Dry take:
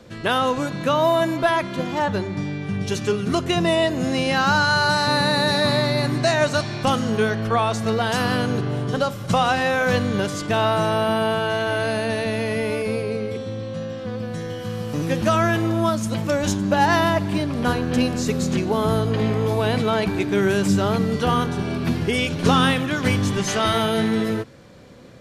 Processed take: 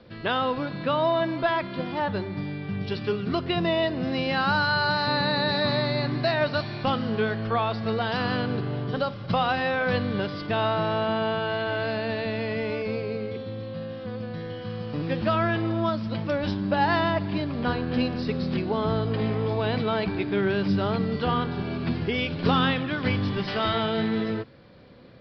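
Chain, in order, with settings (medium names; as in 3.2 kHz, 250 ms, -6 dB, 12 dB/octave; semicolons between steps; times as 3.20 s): resampled via 11.025 kHz; trim -5 dB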